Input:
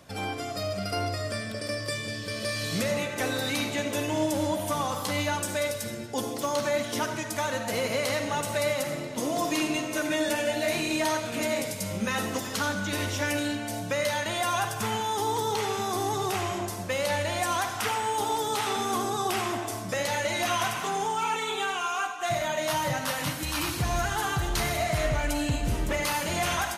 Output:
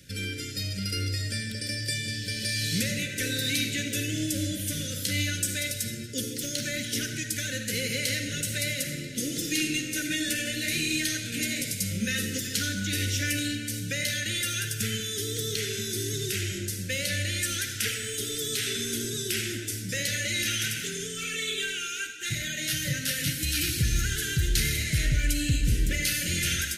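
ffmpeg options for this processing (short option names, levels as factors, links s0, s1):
-af "asuperstop=centerf=900:order=12:qfactor=1,equalizer=f=630:w=0.48:g=-12.5,volume=1.88"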